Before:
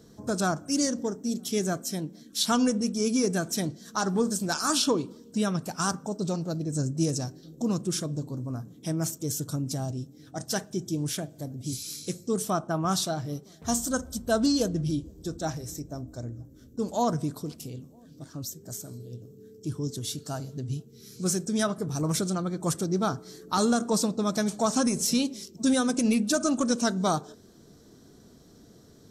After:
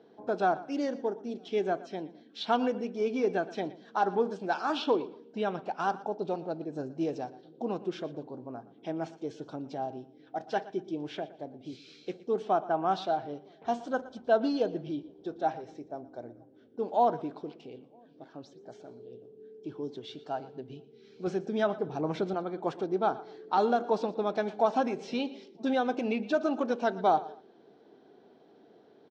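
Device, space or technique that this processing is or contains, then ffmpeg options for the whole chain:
phone earpiece: -filter_complex "[0:a]highpass=380,equalizer=f=390:t=q:w=4:g=4,equalizer=f=790:t=q:w=4:g=8,equalizer=f=1.2k:t=q:w=4:g=-7,equalizer=f=1.9k:t=q:w=4:g=-4,lowpass=f=3k:w=0.5412,lowpass=f=3k:w=1.3066,asettb=1/sr,asplit=3[a][b][c];[a]atrim=end=21.274[d];[b]atrim=start=21.27:end=22.34,asetpts=PTS-STARTPTS,afade=t=in:d=0.004:c=qsin,afade=t=out:st=1.066:d=0.004:c=qsin,equalizer=f=80:t=o:w=2.9:g=7.5[e];[c]atrim=start=22.336[f];[d][e]acrossfade=d=0.004:c1=hsin:c2=qsin[g];[g][f]acrossfade=d=0.004:c1=qsin:c2=hsin,aecho=1:1:117|234:0.126|0.0315"

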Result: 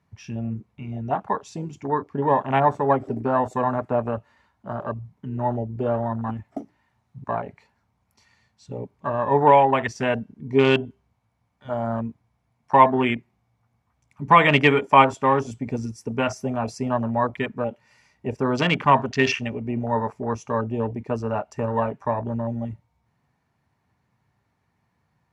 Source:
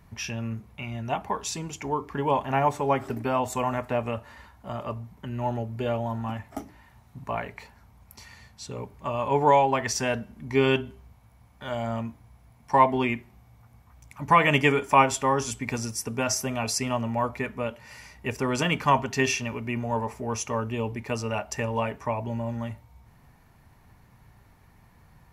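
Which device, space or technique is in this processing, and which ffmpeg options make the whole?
over-cleaned archive recording: -af "highpass=100,lowpass=7.9k,afwtdn=0.0282,volume=4.5dB"

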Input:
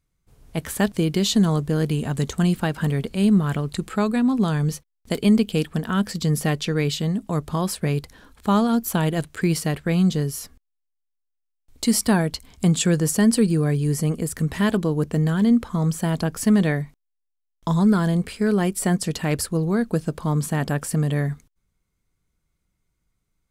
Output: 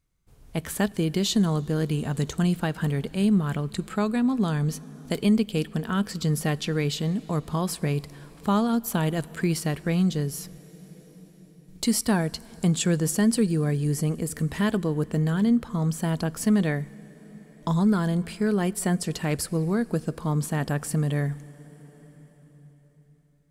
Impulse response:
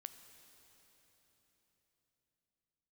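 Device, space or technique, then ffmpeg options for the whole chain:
ducked reverb: -filter_complex "[0:a]asplit=3[a][b][c];[1:a]atrim=start_sample=2205[d];[b][d]afir=irnorm=-1:irlink=0[e];[c]apad=whole_len=1036400[f];[e][f]sidechaincompress=threshold=-24dB:ratio=5:attack=16:release=1480,volume=4dB[g];[a][g]amix=inputs=2:normalize=0,volume=-6dB"

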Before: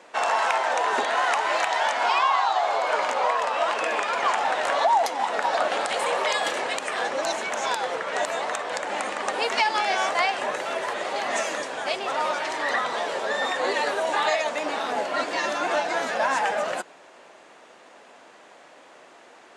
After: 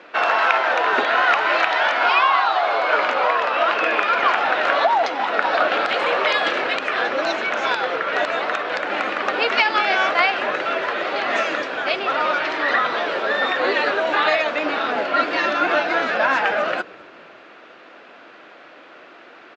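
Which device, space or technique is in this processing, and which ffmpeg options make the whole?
frequency-shifting delay pedal into a guitar cabinet: -filter_complex "[0:a]asplit=4[a][b][c][d];[b]adelay=208,afreqshift=-140,volume=-24dB[e];[c]adelay=416,afreqshift=-280,volume=-31.7dB[f];[d]adelay=624,afreqshift=-420,volume=-39.5dB[g];[a][e][f][g]amix=inputs=4:normalize=0,highpass=90,equalizer=f=320:t=q:w=4:g=5,equalizer=f=890:t=q:w=4:g=-5,equalizer=f=1.4k:t=q:w=4:g=7,equalizer=f=2.5k:t=q:w=4:g=4,lowpass=f=4.5k:w=0.5412,lowpass=f=4.5k:w=1.3066,volume=4.5dB"

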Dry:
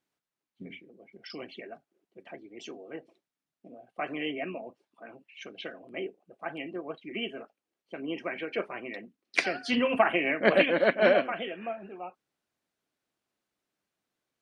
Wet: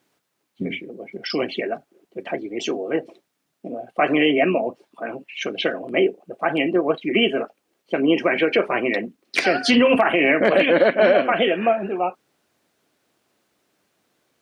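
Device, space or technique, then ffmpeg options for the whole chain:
mastering chain: -af "highpass=57,equalizer=f=450:t=o:w=1.5:g=3,acompressor=threshold=-28dB:ratio=2.5,asoftclip=type=hard:threshold=-16.5dB,alimiter=level_in=22dB:limit=-1dB:release=50:level=0:latency=1,volume=-6dB"

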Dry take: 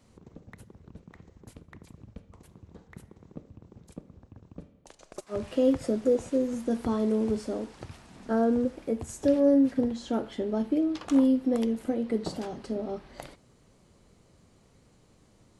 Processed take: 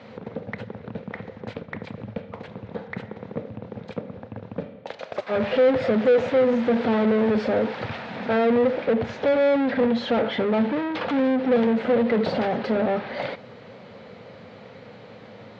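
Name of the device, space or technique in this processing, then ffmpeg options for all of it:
overdrive pedal into a guitar cabinet: -filter_complex "[0:a]asettb=1/sr,asplit=3[a][b][c];[a]atrim=end=8.864[d];[b]atrim=start=8.86:end=9.94,asetpts=PTS-STARTPTS,afade=t=in:d=0.004:c=qsin,afade=t=out:st=1.076:d=0.004:c=qsin,lowpass=f=5.2k:w=0.5412,lowpass=f=5.2k:w=1.3066[e];[c]atrim=start=9.936[f];[d][e]acrossfade=d=0.004:c1=hsin:c2=qsin[g];[g][f]acrossfade=d=0.004:c1=qsin:c2=hsin,asplit=2[h][i];[i]highpass=f=720:p=1,volume=34dB,asoftclip=type=tanh:threshold=-12dB[j];[h][j]amix=inputs=2:normalize=0,lowpass=f=3.9k:p=1,volume=-6dB,highpass=90,equalizer=f=110:t=q:w=4:g=8,equalizer=f=210:t=q:w=4:g=5,equalizer=f=340:t=q:w=4:g=-9,equalizer=f=500:t=q:w=4:g=7,equalizer=f=1.1k:t=q:w=4:g=-6,equalizer=f=2.9k:t=q:w=4:g=-4,lowpass=f=3.6k:w=0.5412,lowpass=f=3.6k:w=1.3066,volume=-3.5dB"

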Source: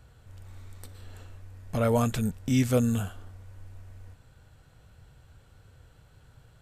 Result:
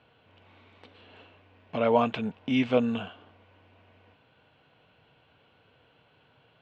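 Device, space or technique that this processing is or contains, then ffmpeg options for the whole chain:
phone earpiece: -filter_complex "[0:a]highpass=340,equalizer=f=370:t=q:w=4:g=-5,equalizer=f=540:t=q:w=4:g=-5,equalizer=f=810:t=q:w=4:g=-4,equalizer=f=1.3k:t=q:w=4:g=-8,equalizer=f=1.8k:t=q:w=4:g=-8,equalizer=f=2.9k:t=q:w=4:g=4,lowpass=f=3k:w=0.5412,lowpass=f=3k:w=1.3066,asettb=1/sr,asplit=3[a][b][c];[a]atrim=end=1.864[d];[b]atrim=start=1.86:end=2.97,asetpts=PTS-STARTPTS,afade=t=in:d=0.004:c=qsin,afade=t=out:st=1.106:d=0.004:c=qsin,equalizer=f=870:w=1.5:g=4.5[e];[c]atrim=start=2.966[f];[d][e]acrossfade=d=0.004:c1=hsin:c2=qsin[g];[g][f]acrossfade=d=0.004:c1=qsin:c2=hsin,volume=6.5dB"

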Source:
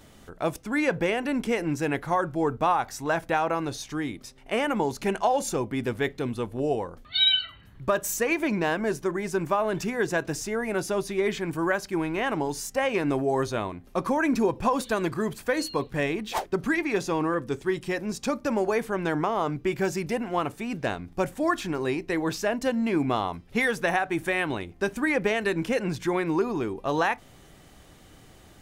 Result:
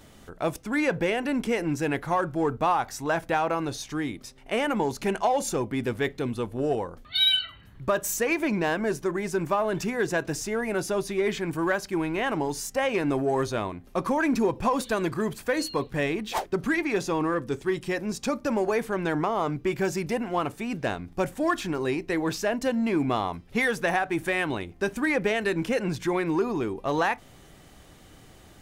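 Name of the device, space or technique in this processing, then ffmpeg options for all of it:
parallel distortion: -filter_complex "[0:a]asplit=2[a][b];[b]asoftclip=type=hard:threshold=-24dB,volume=-9dB[c];[a][c]amix=inputs=2:normalize=0,volume=-2dB"

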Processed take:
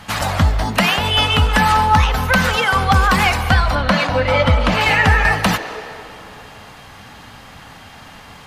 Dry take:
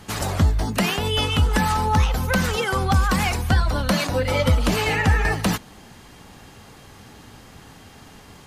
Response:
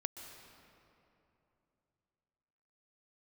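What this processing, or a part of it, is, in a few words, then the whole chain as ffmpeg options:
filtered reverb send: -filter_complex "[0:a]asplit=2[a][b];[b]highpass=f=380:w=0.5412,highpass=f=380:w=1.3066,lowpass=4.5k[c];[1:a]atrim=start_sample=2205[d];[c][d]afir=irnorm=-1:irlink=0,volume=2.5dB[e];[a][e]amix=inputs=2:normalize=0,asettb=1/sr,asplit=3[f][g][h];[f]atrim=end=3.754[i];[g]atrim=start=3.75:end=4.81,asetpts=PTS-STARTPTS,afade=t=in:d=0.004:c=qsin,afade=t=out:st=1.056:d=0.004:c=qsin,aemphasis=mode=reproduction:type=50fm[j];[h]atrim=start=4.806[k];[i][j]acrossfade=d=0.004:c1=hsin:c2=qsin[l];[l][k]acrossfade=d=0.004:c1=qsin:c2=hsin,volume=3dB"

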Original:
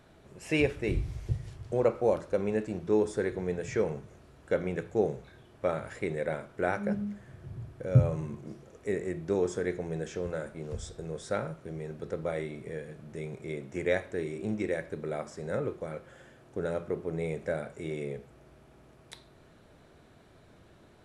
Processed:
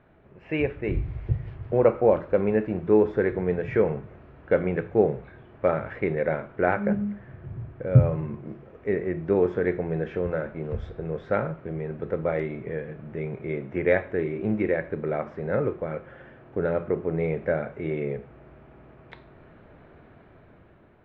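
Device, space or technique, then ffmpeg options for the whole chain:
action camera in a waterproof case: -af "lowpass=f=2.5k:w=0.5412,lowpass=f=2.5k:w=1.3066,dynaudnorm=f=300:g=7:m=7dB" -ar 32000 -c:a aac -b:a 64k

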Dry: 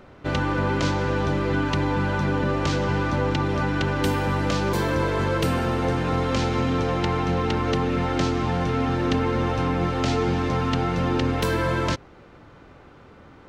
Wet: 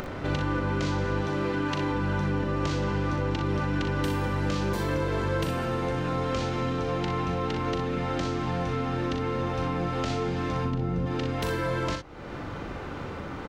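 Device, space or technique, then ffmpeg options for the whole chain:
upward and downward compression: -filter_complex "[0:a]asettb=1/sr,asplit=3[a][b][c];[a]atrim=end=1.214[d];[b]atrim=start=1.21:end=1.91,asetpts=PTS-STARTPTS,afade=t=in:d=0.004:c=qsin,afade=t=out:st=0.696:d=0.004:c=qsin,highpass=f=220:p=1[e];[c]atrim=start=1.906[f];[d][e]acrossfade=d=0.004:c1=hsin:c2=qsin[g];[g][f]acrossfade=d=0.004:c1=qsin:c2=hsin,asplit=3[h][i][j];[h]afade=t=out:st=10.64:d=0.02[k];[i]tiltshelf=f=630:g=8,afade=t=in:st=10.64:d=0.02,afade=t=out:st=11.05:d=0.02[l];[j]afade=t=in:st=11.05:d=0.02[m];[k][l][m]amix=inputs=3:normalize=0,acompressor=mode=upward:threshold=-30dB:ratio=2.5,acompressor=threshold=-30dB:ratio=6,aecho=1:1:40|61:0.422|0.422,volume=2.5dB"

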